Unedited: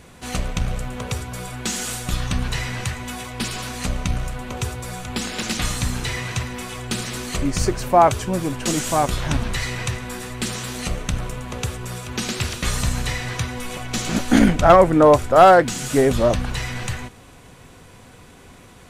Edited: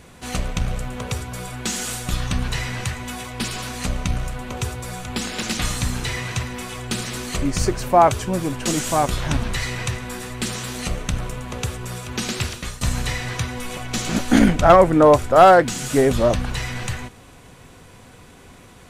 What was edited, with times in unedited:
12.41–12.81 s: fade out, to -18.5 dB

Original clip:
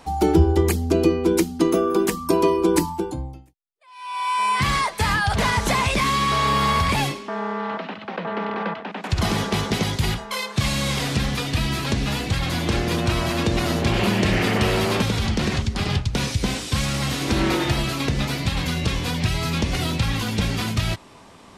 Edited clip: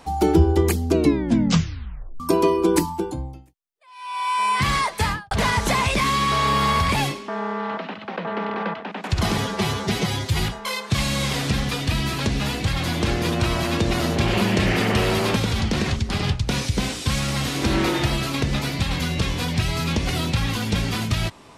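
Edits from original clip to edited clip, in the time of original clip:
0.93 s: tape stop 1.27 s
5.02–5.31 s: studio fade out
9.38–10.06 s: stretch 1.5×

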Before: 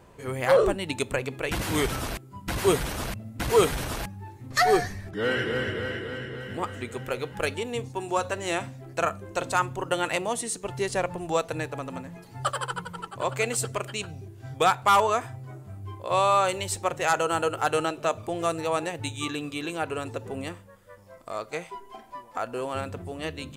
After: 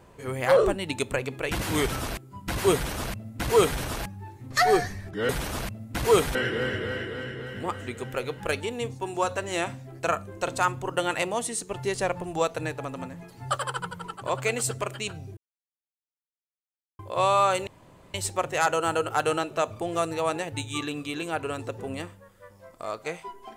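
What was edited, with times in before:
2.74–3.80 s: copy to 5.29 s
14.31–15.93 s: mute
16.61 s: insert room tone 0.47 s

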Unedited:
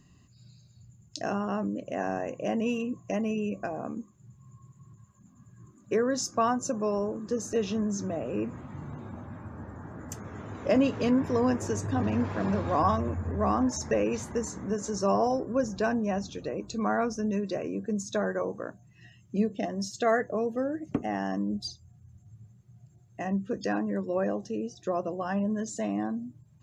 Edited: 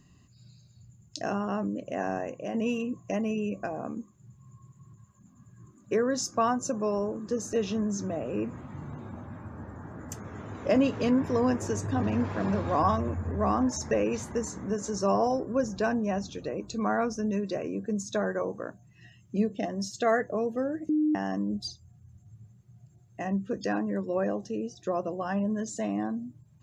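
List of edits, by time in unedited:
2.17–2.54 s: fade out, to -6 dB
20.89–21.15 s: bleep 305 Hz -21.5 dBFS

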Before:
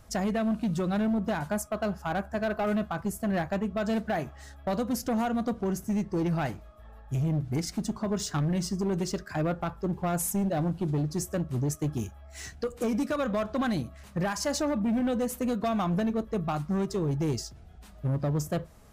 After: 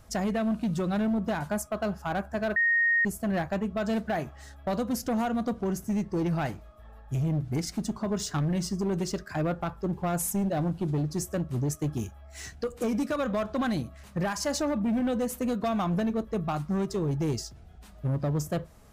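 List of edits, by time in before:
2.56–3.05 s: bleep 1.86 kHz -20.5 dBFS

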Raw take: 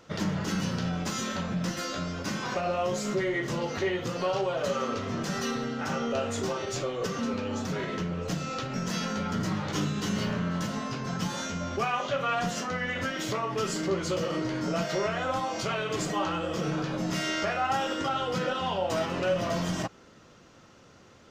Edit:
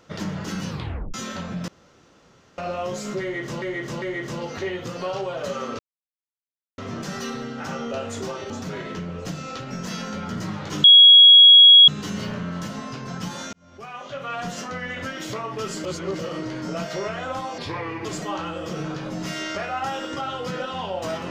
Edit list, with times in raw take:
0.69 s: tape stop 0.45 s
1.68–2.58 s: room tone
3.22–3.62 s: loop, 3 plays
4.99 s: insert silence 0.99 s
6.71–7.53 s: delete
9.87 s: add tone 3.32 kHz -6 dBFS 1.04 s
11.52–12.56 s: fade in
13.83–14.18 s: reverse
15.57–15.93 s: speed 76%

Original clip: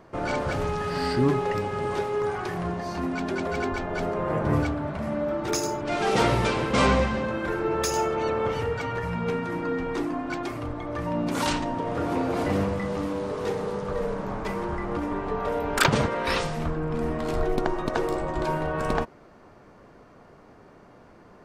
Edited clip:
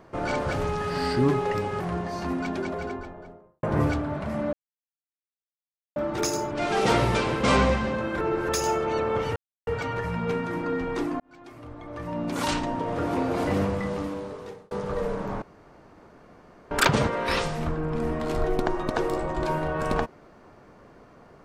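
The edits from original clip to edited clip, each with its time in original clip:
1.80–2.53 s: delete
3.03–4.36 s: studio fade out
5.26 s: insert silence 1.43 s
7.51–7.79 s: reverse
8.66 s: insert silence 0.31 s
10.19–11.63 s: fade in
12.86–13.70 s: fade out
14.41–15.70 s: room tone

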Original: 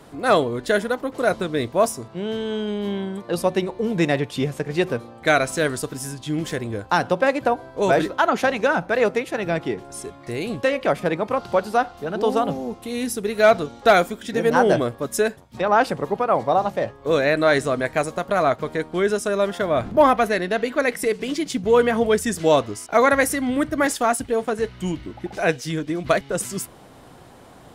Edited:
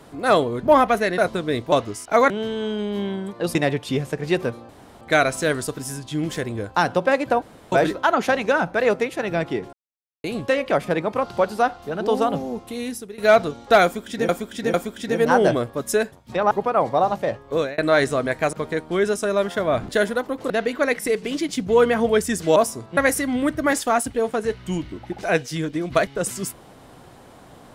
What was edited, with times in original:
0.63–1.24 s: swap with 19.92–20.47 s
1.78–2.19 s: swap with 22.53–23.11 s
3.44–4.02 s: delete
5.16 s: insert room tone 0.32 s
7.57–7.87 s: room tone
9.88–10.39 s: mute
12.84–13.33 s: fade out, to -18 dB
13.99–14.44 s: loop, 3 plays
15.76–16.05 s: delete
17.07–17.32 s: fade out
18.07–18.56 s: delete

